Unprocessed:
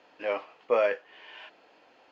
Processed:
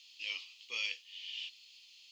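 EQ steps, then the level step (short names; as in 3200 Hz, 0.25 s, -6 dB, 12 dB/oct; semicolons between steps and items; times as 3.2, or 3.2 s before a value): inverse Chebyshev high-pass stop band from 1700 Hz, stop band 40 dB; +15.0 dB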